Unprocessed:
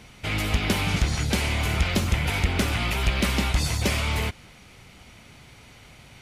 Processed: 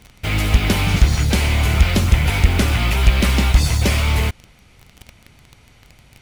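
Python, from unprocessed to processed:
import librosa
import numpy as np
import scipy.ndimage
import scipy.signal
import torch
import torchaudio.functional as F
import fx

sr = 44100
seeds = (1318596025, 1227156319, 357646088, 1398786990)

p1 = fx.low_shelf(x, sr, hz=83.0, db=9.5)
p2 = fx.quant_dither(p1, sr, seeds[0], bits=6, dither='none')
p3 = p1 + (p2 * 10.0 ** (3.0 / 20.0))
y = p3 * 10.0 ** (-3.0 / 20.0)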